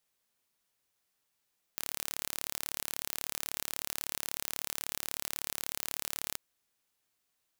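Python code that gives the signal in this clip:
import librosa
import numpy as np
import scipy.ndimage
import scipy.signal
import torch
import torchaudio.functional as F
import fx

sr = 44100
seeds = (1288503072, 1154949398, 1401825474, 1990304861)

y = 10.0 ** (-8.0 / 20.0) * (np.mod(np.arange(round(4.59 * sr)), round(sr / 36.3)) == 0)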